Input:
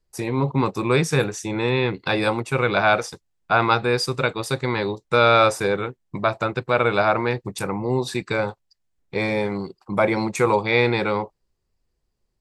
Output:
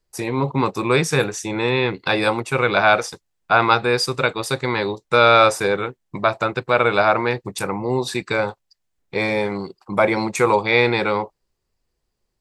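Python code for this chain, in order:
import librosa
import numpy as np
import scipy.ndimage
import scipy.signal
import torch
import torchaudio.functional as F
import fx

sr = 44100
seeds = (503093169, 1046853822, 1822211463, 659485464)

y = fx.low_shelf(x, sr, hz=290.0, db=-5.5)
y = y * librosa.db_to_amplitude(3.5)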